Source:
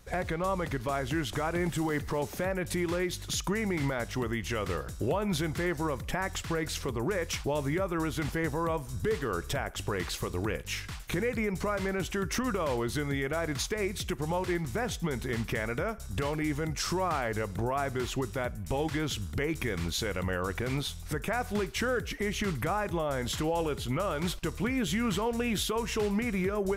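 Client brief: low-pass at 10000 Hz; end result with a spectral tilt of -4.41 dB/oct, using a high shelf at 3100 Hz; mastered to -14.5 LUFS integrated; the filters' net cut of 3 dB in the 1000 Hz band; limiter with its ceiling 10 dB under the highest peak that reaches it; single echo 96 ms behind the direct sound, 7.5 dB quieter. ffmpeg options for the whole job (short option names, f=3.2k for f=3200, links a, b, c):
-af "lowpass=10k,equalizer=f=1k:t=o:g=-4.5,highshelf=f=3.1k:g=4.5,alimiter=level_in=3dB:limit=-24dB:level=0:latency=1,volume=-3dB,aecho=1:1:96:0.422,volume=21dB"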